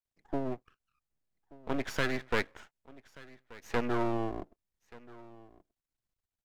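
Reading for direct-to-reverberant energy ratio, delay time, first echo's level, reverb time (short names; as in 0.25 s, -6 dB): none, 1.181 s, -21.0 dB, none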